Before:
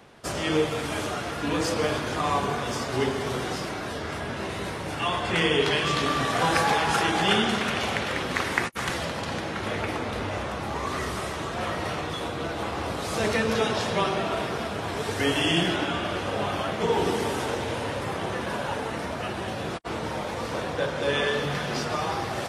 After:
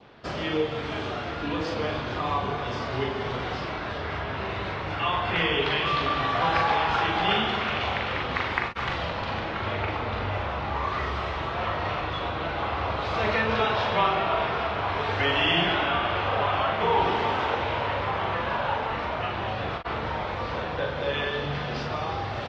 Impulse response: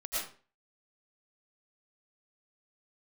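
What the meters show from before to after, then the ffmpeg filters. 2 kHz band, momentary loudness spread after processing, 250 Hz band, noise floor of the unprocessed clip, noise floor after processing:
+0.5 dB, 8 LU, −4.0 dB, −33 dBFS, −32 dBFS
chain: -filter_complex "[0:a]asplit=2[link_01][link_02];[link_02]adelay=41,volume=-5dB[link_03];[link_01][link_03]amix=inputs=2:normalize=0,asubboost=boost=3:cutoff=100,acrossover=split=700|2700[link_04][link_05][link_06];[link_05]dynaudnorm=framelen=710:gausssize=11:maxgain=13dB[link_07];[link_04][link_07][link_06]amix=inputs=3:normalize=0,lowpass=frequency=4400:width=0.5412,lowpass=frequency=4400:width=1.3066,asplit=2[link_08][link_09];[link_09]acompressor=threshold=-30dB:ratio=6,volume=0.5dB[link_10];[link_08][link_10]amix=inputs=2:normalize=0,adynamicequalizer=threshold=0.0282:dfrequency=1700:dqfactor=2.3:tfrequency=1700:tqfactor=2.3:attack=5:release=100:ratio=0.375:range=2.5:mode=cutabove:tftype=bell,volume=-6.5dB"

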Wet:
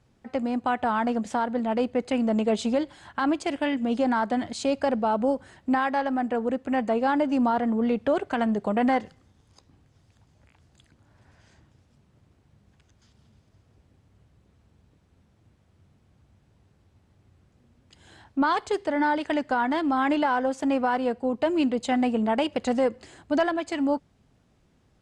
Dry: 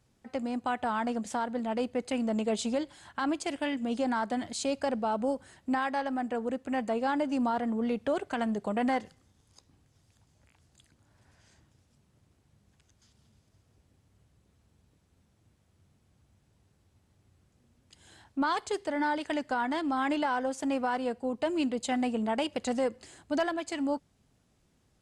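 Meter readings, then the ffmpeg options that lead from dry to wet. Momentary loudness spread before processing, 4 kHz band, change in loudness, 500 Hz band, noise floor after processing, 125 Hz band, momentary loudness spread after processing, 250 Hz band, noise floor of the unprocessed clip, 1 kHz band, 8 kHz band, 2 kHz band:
4 LU, +2.5 dB, +5.5 dB, +6.0 dB, −64 dBFS, +6.0 dB, 4 LU, +6.0 dB, −70 dBFS, +5.5 dB, can't be measured, +5.0 dB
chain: -af "aemphasis=mode=reproduction:type=50kf,volume=6dB"

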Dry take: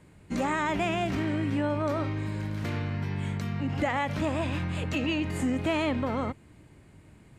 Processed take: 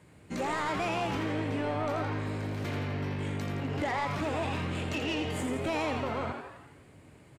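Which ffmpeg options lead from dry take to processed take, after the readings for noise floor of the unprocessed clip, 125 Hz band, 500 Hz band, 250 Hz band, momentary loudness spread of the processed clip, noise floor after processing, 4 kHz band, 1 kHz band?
−55 dBFS, −3.5 dB, −1.5 dB, −5.0 dB, 4 LU, −56 dBFS, −1.0 dB, −1.0 dB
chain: -filter_complex "[0:a]highpass=79,equalizer=frequency=240:width=1.9:gain=-5.5,asoftclip=type=tanh:threshold=-27dB,asplit=8[link_01][link_02][link_03][link_04][link_05][link_06][link_07][link_08];[link_02]adelay=84,afreqshift=150,volume=-6.5dB[link_09];[link_03]adelay=168,afreqshift=300,volume=-11.9dB[link_10];[link_04]adelay=252,afreqshift=450,volume=-17.2dB[link_11];[link_05]adelay=336,afreqshift=600,volume=-22.6dB[link_12];[link_06]adelay=420,afreqshift=750,volume=-27.9dB[link_13];[link_07]adelay=504,afreqshift=900,volume=-33.3dB[link_14];[link_08]adelay=588,afreqshift=1050,volume=-38.6dB[link_15];[link_01][link_09][link_10][link_11][link_12][link_13][link_14][link_15]amix=inputs=8:normalize=0"

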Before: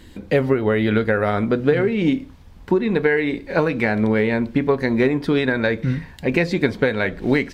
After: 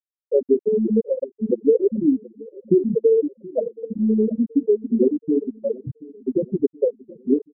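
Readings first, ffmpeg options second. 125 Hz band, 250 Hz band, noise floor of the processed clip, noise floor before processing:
−11.0 dB, −1.0 dB, below −85 dBFS, −43 dBFS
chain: -filter_complex "[0:a]adynamicequalizer=threshold=0.0112:dfrequency=130:dqfactor=2.4:tfrequency=130:tqfactor=2.4:attack=5:release=100:ratio=0.375:range=2:mode=cutabove:tftype=bell,asplit=2[link_01][link_02];[link_02]aecho=0:1:60|120|180|240:0.316|0.104|0.0344|0.0114[link_03];[link_01][link_03]amix=inputs=2:normalize=0,afftfilt=real='re*gte(hypot(re,im),1)':imag='im*gte(hypot(re,im),1)':win_size=1024:overlap=0.75,asplit=2[link_04][link_05];[link_05]adelay=727,lowpass=frequency=1500:poles=1,volume=-21dB,asplit=2[link_06][link_07];[link_07]adelay=727,lowpass=frequency=1500:poles=1,volume=0.49,asplit=2[link_08][link_09];[link_09]adelay=727,lowpass=frequency=1500:poles=1,volume=0.49,asplit=2[link_10][link_11];[link_11]adelay=727,lowpass=frequency=1500:poles=1,volume=0.49[link_12];[link_06][link_08][link_10][link_12]amix=inputs=4:normalize=0[link_13];[link_04][link_13]amix=inputs=2:normalize=0,volume=2.5dB"

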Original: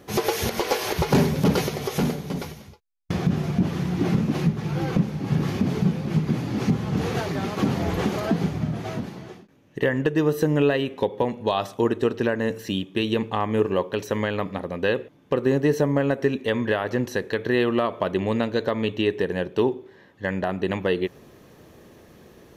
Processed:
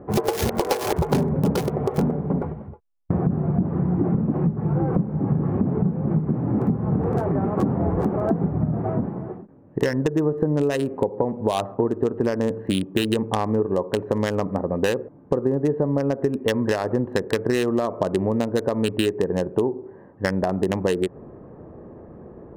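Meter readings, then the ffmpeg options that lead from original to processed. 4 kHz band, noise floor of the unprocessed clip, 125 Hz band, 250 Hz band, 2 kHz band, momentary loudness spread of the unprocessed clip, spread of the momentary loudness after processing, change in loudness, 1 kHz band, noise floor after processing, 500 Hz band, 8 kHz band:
−2.5 dB, −52 dBFS, +2.0 dB, +1.5 dB, −4.0 dB, 7 LU, 7 LU, +1.0 dB, +0.5 dB, −46 dBFS, +1.0 dB, −1.0 dB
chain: -filter_complex "[0:a]acrossover=split=1200[link_01][link_02];[link_02]acrusher=bits=3:mix=0:aa=0.5[link_03];[link_01][link_03]amix=inputs=2:normalize=0,acompressor=threshold=-26dB:ratio=6,volume=8dB"

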